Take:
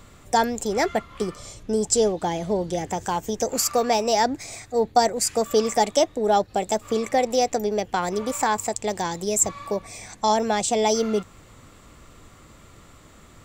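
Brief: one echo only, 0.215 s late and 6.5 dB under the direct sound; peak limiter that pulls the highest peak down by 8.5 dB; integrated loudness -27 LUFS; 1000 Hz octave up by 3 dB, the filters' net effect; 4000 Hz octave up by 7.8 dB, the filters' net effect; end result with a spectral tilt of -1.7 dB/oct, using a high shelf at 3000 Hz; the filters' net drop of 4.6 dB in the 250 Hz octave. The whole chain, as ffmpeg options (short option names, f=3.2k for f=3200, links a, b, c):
-af "equalizer=f=250:t=o:g=-6,equalizer=f=1k:t=o:g=4,highshelf=f=3k:g=3.5,equalizer=f=4k:t=o:g=7,alimiter=limit=-10dB:level=0:latency=1,aecho=1:1:215:0.473,volume=-4.5dB"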